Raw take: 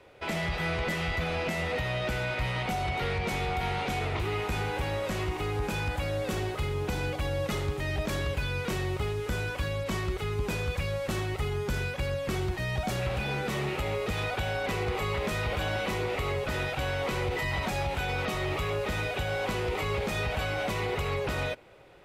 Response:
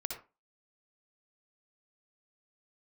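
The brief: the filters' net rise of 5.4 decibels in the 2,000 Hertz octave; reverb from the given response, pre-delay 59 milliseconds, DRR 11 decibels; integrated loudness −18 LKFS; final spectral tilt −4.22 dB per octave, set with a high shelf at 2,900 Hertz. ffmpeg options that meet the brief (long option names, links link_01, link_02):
-filter_complex "[0:a]equalizer=frequency=2000:width_type=o:gain=4.5,highshelf=frequency=2900:gain=5.5,asplit=2[link_01][link_02];[1:a]atrim=start_sample=2205,adelay=59[link_03];[link_02][link_03]afir=irnorm=-1:irlink=0,volume=-11.5dB[link_04];[link_01][link_04]amix=inputs=2:normalize=0,volume=10dB"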